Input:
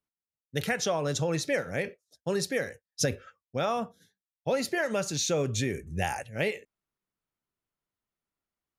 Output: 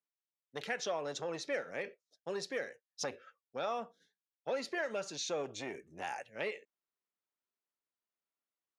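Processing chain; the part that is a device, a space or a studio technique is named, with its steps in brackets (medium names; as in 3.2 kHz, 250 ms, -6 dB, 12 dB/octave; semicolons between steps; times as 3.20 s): public-address speaker with an overloaded transformer (transformer saturation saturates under 740 Hz; band-pass 320–5400 Hz); trim -6.5 dB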